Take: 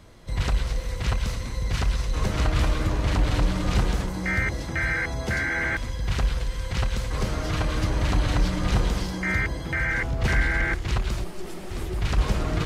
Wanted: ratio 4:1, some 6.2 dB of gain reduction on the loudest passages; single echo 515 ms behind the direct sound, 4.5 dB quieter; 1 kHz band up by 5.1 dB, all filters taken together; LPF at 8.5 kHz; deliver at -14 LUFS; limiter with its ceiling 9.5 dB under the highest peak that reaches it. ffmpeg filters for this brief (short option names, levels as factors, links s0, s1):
-af "lowpass=8500,equalizer=f=1000:t=o:g=6.5,acompressor=threshold=0.0631:ratio=4,alimiter=level_in=1.06:limit=0.0631:level=0:latency=1,volume=0.944,aecho=1:1:515:0.596,volume=8.41"